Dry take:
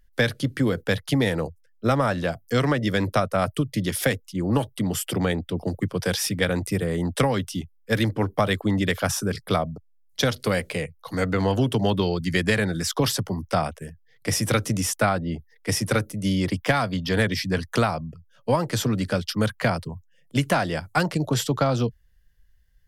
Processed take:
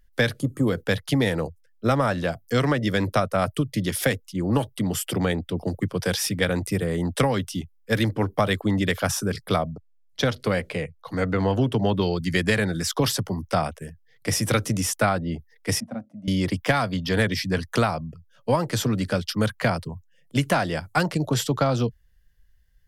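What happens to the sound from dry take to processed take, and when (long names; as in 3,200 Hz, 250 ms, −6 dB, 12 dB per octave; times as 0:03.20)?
0:00.40–0:00.68: gain on a spectral selection 1,300–6,400 Hz −16 dB
0:09.71–0:12.00: high-shelf EQ 6,700 Hz → 4,100 Hz −11 dB
0:15.80–0:16.28: pair of resonant band-passes 400 Hz, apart 1.5 octaves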